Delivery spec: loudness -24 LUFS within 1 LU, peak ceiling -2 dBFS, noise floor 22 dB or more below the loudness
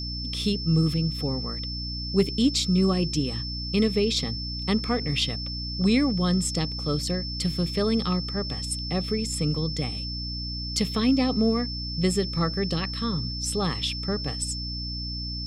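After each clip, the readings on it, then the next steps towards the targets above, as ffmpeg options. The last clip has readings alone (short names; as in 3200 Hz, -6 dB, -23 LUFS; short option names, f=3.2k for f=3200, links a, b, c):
hum 60 Hz; harmonics up to 300 Hz; hum level -32 dBFS; steady tone 5300 Hz; tone level -33 dBFS; loudness -26.0 LUFS; peak -10.0 dBFS; loudness target -24.0 LUFS
-> -af "bandreject=f=60:t=h:w=6,bandreject=f=120:t=h:w=6,bandreject=f=180:t=h:w=6,bandreject=f=240:t=h:w=6,bandreject=f=300:t=h:w=6"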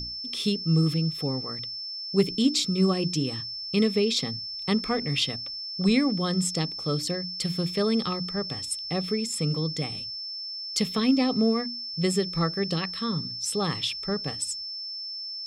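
hum none; steady tone 5300 Hz; tone level -33 dBFS
-> -af "bandreject=f=5.3k:w=30"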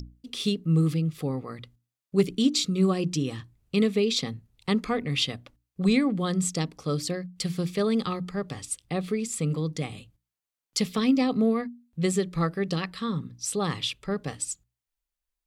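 steady tone none; loudness -27.5 LUFS; peak -10.0 dBFS; loudness target -24.0 LUFS
-> -af "volume=3.5dB"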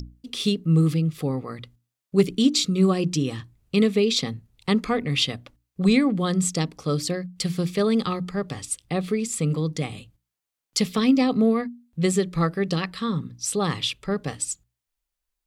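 loudness -24.0 LUFS; peak -6.5 dBFS; noise floor -85 dBFS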